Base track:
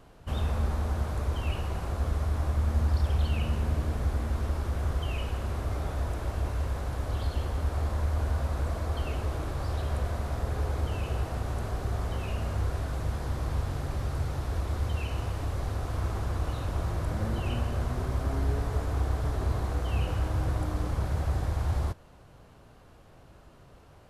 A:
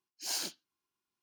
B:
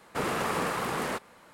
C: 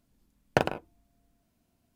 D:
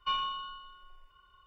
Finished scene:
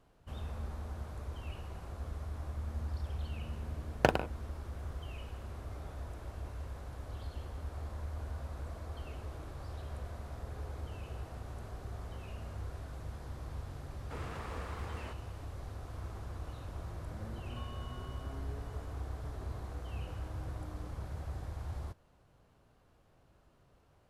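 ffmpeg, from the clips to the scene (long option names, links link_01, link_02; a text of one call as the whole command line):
ffmpeg -i bed.wav -i cue0.wav -i cue1.wav -i cue2.wav -i cue3.wav -filter_complex "[0:a]volume=-12.5dB[link_01];[2:a]equalizer=frequency=13000:width_type=o:width=1:gain=-12.5[link_02];[4:a]acompressor=threshold=-48dB:ratio=6:attack=3.2:release=140:knee=1:detection=peak[link_03];[3:a]atrim=end=1.95,asetpts=PTS-STARTPTS,volume=-2dB,afade=type=in:duration=0.004:curve=hsin,afade=type=out:start_time=1.946:duration=0.004:curve=hsin,adelay=3480[link_04];[link_02]atrim=end=1.53,asetpts=PTS-STARTPTS,volume=-15.5dB,afade=type=in:duration=0.004:curve=hsin,afade=type=out:start_time=1.526:duration=0.004:curve=hsin,adelay=13950[link_05];[link_03]atrim=end=1.46,asetpts=PTS-STARTPTS,volume=-3.5dB,afade=type=in:duration=0.004:curve=hsin,afade=type=out:start_time=1.456:duration=0.004:curve=hsin,adelay=17500[link_06];[link_01][link_04][link_05][link_06]amix=inputs=4:normalize=0" out.wav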